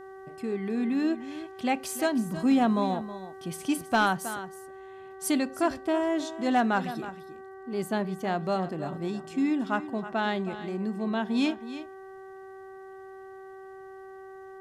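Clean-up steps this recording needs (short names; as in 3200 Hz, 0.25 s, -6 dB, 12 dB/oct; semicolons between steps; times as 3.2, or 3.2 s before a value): clip repair -16 dBFS; de-hum 383.5 Hz, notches 5; inverse comb 0.319 s -13 dB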